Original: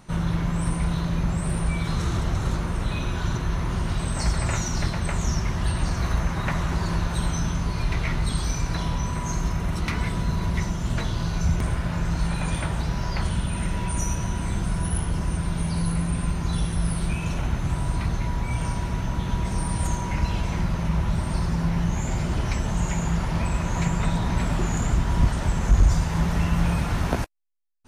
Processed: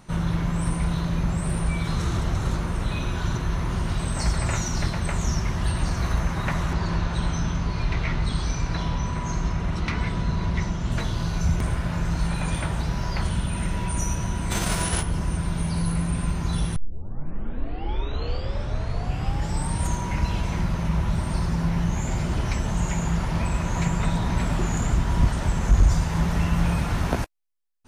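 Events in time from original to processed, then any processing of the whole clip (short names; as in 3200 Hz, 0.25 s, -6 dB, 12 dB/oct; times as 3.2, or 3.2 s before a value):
6.73–10.92 LPF 5700 Hz
14.5–15.01 spectral whitening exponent 0.6
16.76 tape start 3.09 s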